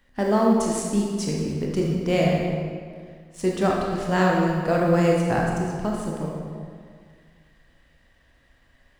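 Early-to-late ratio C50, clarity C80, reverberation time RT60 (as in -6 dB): 0.5 dB, 2.5 dB, 1.9 s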